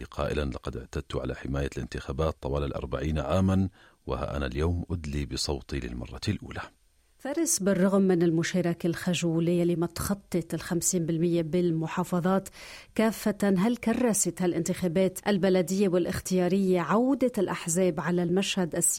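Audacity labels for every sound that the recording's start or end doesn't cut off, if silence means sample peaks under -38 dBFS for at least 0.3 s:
4.080000	6.660000	sound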